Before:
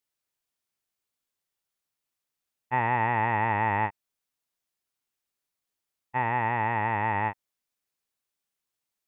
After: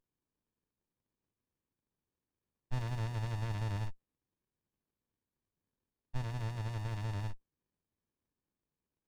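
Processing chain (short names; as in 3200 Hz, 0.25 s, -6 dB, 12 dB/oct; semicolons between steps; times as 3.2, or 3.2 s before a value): running maximum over 65 samples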